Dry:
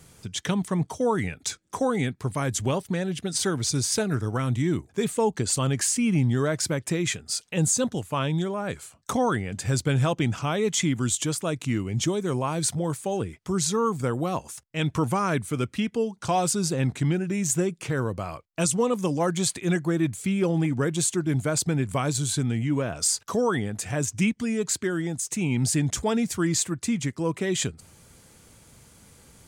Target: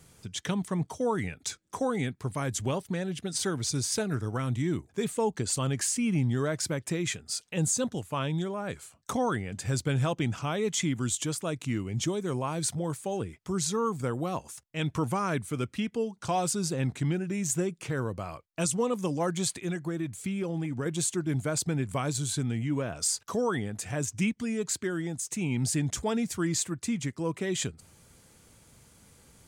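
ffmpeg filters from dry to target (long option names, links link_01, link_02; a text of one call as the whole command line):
ffmpeg -i in.wav -filter_complex "[0:a]asettb=1/sr,asplit=3[link_01][link_02][link_03];[link_01]atrim=end=19.574[link_04];[link_02]atrim=start=19.57:end=20.86,asetpts=PTS-STARTPTS,afade=type=in:duration=0.004:curve=qsin,afade=type=out:start_time=1.286:duration=0.004:curve=qsin,acompressor=threshold=-24dB:ratio=6[link_05];[link_03]atrim=start=20.856[link_06];[link_04][link_05]acrossfade=duration=0.004:curve1=hsin:curve2=qsin[link_07];[link_07][link_06]acrossfade=duration=0.004:curve1=qsin:curve2=hsin,volume=-4.5dB" out.wav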